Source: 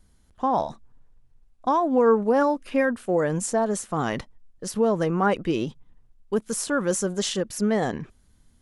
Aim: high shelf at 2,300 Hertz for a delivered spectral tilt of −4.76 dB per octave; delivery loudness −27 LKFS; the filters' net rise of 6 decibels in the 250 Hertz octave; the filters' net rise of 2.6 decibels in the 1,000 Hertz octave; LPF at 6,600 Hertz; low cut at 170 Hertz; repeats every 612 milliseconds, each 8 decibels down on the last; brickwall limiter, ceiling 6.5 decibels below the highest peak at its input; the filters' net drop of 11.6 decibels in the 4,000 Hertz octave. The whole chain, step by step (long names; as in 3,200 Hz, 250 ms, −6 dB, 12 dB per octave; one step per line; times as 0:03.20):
high-pass filter 170 Hz
low-pass filter 6,600 Hz
parametric band 250 Hz +8.5 dB
parametric band 1,000 Hz +4.5 dB
high-shelf EQ 2,300 Hz −8 dB
parametric band 4,000 Hz −8 dB
brickwall limiter −13 dBFS
repeating echo 612 ms, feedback 40%, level −8 dB
level −3.5 dB